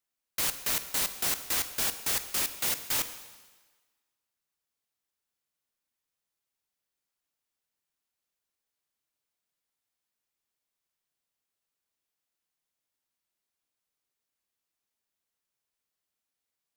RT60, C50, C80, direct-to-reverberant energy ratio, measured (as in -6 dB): 1.4 s, 11.5 dB, 13.0 dB, 10.0 dB